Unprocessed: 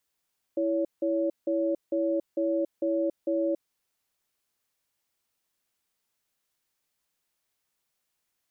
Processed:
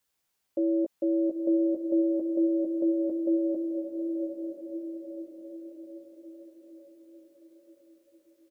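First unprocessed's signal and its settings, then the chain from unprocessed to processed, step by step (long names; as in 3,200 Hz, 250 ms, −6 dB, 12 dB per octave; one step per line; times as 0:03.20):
tone pair in a cadence 330 Hz, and 562 Hz, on 0.28 s, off 0.17 s, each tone −26.5 dBFS 3.01 s
double-tracking delay 15 ms −5 dB
on a send: feedback delay with all-pass diffusion 921 ms, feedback 52%, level −5 dB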